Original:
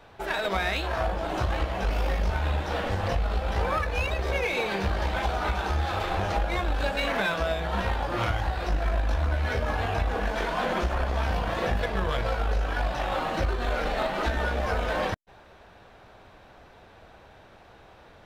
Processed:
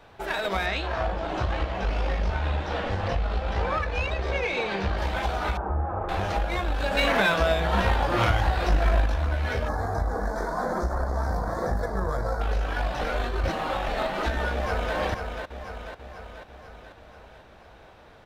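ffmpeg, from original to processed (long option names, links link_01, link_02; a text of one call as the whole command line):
ffmpeg -i in.wav -filter_complex "[0:a]asettb=1/sr,asplit=3[link_01][link_02][link_03];[link_01]atrim=end=0.664[link_04];[link_02]atrim=start=0.66:end=4.98,asetpts=PTS-STARTPTS,afade=type=in:duration=0.004:curve=qsin,afade=type=out:start_time=4.316:duration=0.004:curve=qsin,lowpass=5700[link_05];[link_03]atrim=start=4.976[link_06];[link_04][link_05]acrossfade=duration=0.004:curve1=hsin:curve2=qsin[link_07];[link_07][link_06]acrossfade=duration=0.004:curve1=qsin:curve2=hsin,asettb=1/sr,asplit=3[link_08][link_09][link_10];[link_08]atrim=end=5.574[link_11];[link_09]atrim=start=5.57:end=6.09,asetpts=PTS-STARTPTS,afade=type=in:duration=0.004:curve=qsin,afade=type=out:start_time=0.516:duration=0.004:curve=qsin,lowpass=frequency=1200:width=0.5412,lowpass=frequency=1200:width=1.3066[link_12];[link_10]atrim=start=6.086[link_13];[link_11][link_12]acrossfade=duration=0.004:curve1=hsin:curve2=qsin[link_14];[link_14][link_13]acrossfade=duration=0.004:curve1=qsin:curve2=hsin,asettb=1/sr,asplit=3[link_15][link_16][link_17];[link_15]atrim=end=6.914[link_18];[link_16]atrim=start=6.91:end=9.06,asetpts=PTS-STARTPTS,afade=type=in:duration=0.004:curve=qsin,afade=type=out:start_time=2.146:duration=0.004:curve=qsin,acontrast=21[link_19];[link_17]atrim=start=9.056[link_20];[link_18][link_19]acrossfade=duration=0.004:curve1=hsin:curve2=qsin[link_21];[link_21][link_20]acrossfade=duration=0.004:curve1=qsin:curve2=hsin,asettb=1/sr,asplit=3[link_22][link_23][link_24];[link_22]atrim=end=9.684[link_25];[link_23]atrim=start=9.68:end=12.41,asetpts=PTS-STARTPTS,afade=type=in:duration=0.004:curve=qsin,afade=type=out:start_time=2.726:duration=0.004:curve=qsin,asuperstop=centerf=2800:order=4:qfactor=0.81[link_26];[link_24]atrim=start=12.406[link_27];[link_25][link_26]acrossfade=duration=0.004:curve1=hsin:curve2=qsin[link_28];[link_28][link_27]acrossfade=duration=0.004:curve1=qsin:curve2=hsin,asplit=2[link_29][link_30];[link_30]afade=type=in:start_time=14.52:duration=0.01,afade=type=out:start_time=14.96:duration=0.01,aecho=0:1:490|980|1470|1960|2450|2940|3430|3920:0.501187|0.300712|0.180427|0.108256|0.0649539|0.0389723|0.0233834|0.01403[link_31];[link_29][link_31]amix=inputs=2:normalize=0,asplit=3[link_32][link_33][link_34];[link_32]atrim=end=13.012[link_35];[link_33]atrim=start=13.008:end=13.882,asetpts=PTS-STARTPTS,areverse[link_36];[link_34]atrim=start=13.878[link_37];[link_35][link_36]acrossfade=duration=0.004:curve1=hsin:curve2=hsin[link_38];[link_38][link_37]acrossfade=duration=0.004:curve1=hsin:curve2=hsin" out.wav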